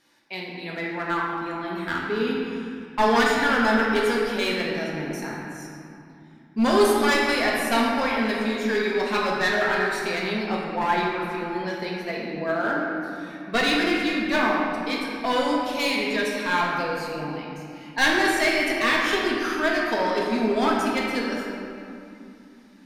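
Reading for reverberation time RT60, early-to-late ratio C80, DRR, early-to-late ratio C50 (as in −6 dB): 2.7 s, 1.0 dB, −3.5 dB, −0.5 dB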